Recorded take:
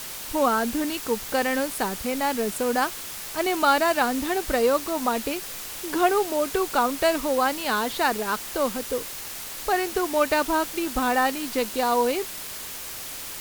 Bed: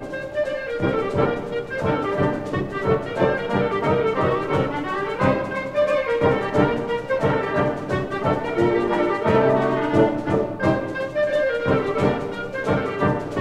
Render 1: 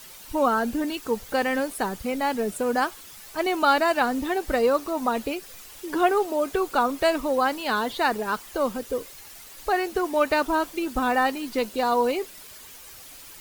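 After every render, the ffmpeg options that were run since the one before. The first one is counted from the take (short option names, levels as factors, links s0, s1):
-af "afftdn=nr=11:nf=-36"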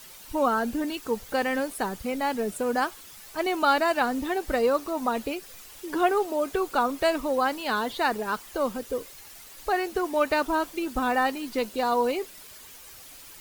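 -af "volume=0.794"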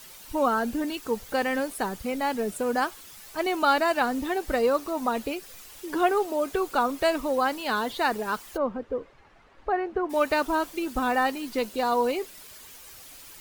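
-filter_complex "[0:a]asplit=3[s0][s1][s2];[s0]afade=t=out:st=8.56:d=0.02[s3];[s1]lowpass=1500,afade=t=in:st=8.56:d=0.02,afade=t=out:st=10.09:d=0.02[s4];[s2]afade=t=in:st=10.09:d=0.02[s5];[s3][s4][s5]amix=inputs=3:normalize=0"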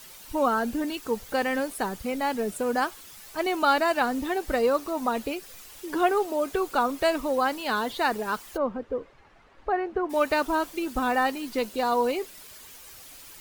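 -af anull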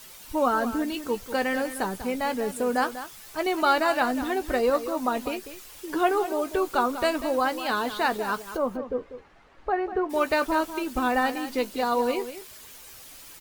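-filter_complex "[0:a]asplit=2[s0][s1];[s1]adelay=16,volume=0.251[s2];[s0][s2]amix=inputs=2:normalize=0,aecho=1:1:194:0.251"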